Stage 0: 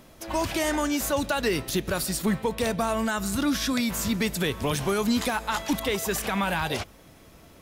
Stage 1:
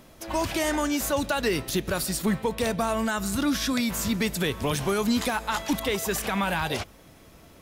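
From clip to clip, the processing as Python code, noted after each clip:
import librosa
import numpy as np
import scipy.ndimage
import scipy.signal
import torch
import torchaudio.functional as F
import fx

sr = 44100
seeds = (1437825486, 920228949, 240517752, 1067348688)

y = x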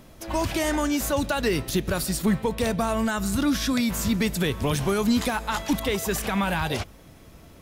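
y = fx.low_shelf(x, sr, hz=210.0, db=6.0)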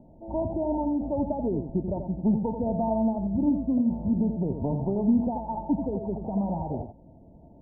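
y = scipy.signal.sosfilt(scipy.signal.cheby1(6, 6, 930.0, 'lowpass', fs=sr, output='sos'), x)
y = y + 10.0 ** (-7.5 / 20.0) * np.pad(y, (int(85 * sr / 1000.0), 0))[:len(y)]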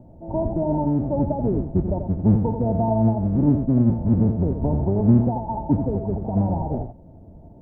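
y = fx.octave_divider(x, sr, octaves=1, level_db=0.0)
y = F.gain(torch.from_numpy(y), 4.0).numpy()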